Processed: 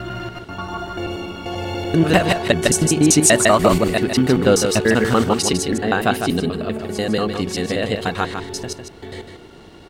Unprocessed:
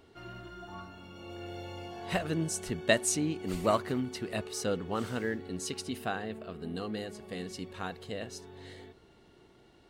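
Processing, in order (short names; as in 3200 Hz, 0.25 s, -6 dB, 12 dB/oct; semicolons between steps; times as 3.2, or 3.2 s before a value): slices in reverse order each 97 ms, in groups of 5; echo 0.153 s -7 dB; maximiser +18 dB; gain -1 dB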